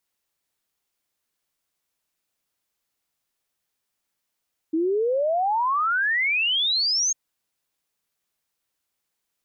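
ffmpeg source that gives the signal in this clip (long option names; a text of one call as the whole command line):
ffmpeg -f lavfi -i "aevalsrc='0.106*clip(min(t,2.4-t)/0.01,0,1)*sin(2*PI*310*2.4/log(6600/310)*(exp(log(6600/310)*t/2.4)-1))':duration=2.4:sample_rate=44100" out.wav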